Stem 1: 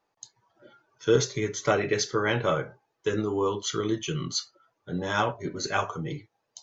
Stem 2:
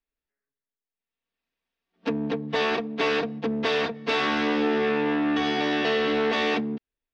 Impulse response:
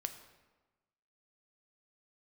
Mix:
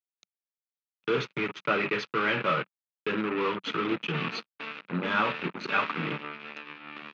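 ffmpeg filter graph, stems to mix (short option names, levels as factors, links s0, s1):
-filter_complex "[0:a]asoftclip=type=tanh:threshold=0.119,volume=0.944[s0];[1:a]adelay=1600,volume=0.224,asplit=2[s1][s2];[s2]volume=0.158,aecho=0:1:94|188|282|376|470|564:1|0.46|0.212|0.0973|0.0448|0.0206[s3];[s0][s1][s3]amix=inputs=3:normalize=0,acrusher=bits=4:mix=0:aa=0.5,highpass=f=150:w=0.5412,highpass=f=150:w=1.3066,equalizer=f=190:t=q:w=4:g=4,equalizer=f=420:t=q:w=4:g=-3,equalizer=f=710:t=q:w=4:g=-7,equalizer=f=1300:t=q:w=4:g=7,equalizer=f=2500:t=q:w=4:g=9,lowpass=f=3500:w=0.5412,lowpass=f=3500:w=1.3066"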